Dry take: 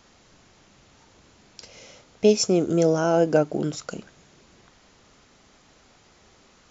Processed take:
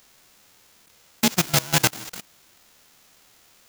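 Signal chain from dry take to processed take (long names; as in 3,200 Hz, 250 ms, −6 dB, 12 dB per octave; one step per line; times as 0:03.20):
spectral envelope flattened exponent 0.1
time stretch by overlap-add 0.55×, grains 26 ms
output level in coarse steps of 20 dB
level +3.5 dB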